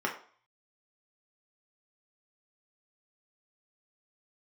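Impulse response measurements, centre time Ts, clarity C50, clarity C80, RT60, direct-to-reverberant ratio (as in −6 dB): 20 ms, 9.0 dB, 13.5 dB, 0.50 s, −1.5 dB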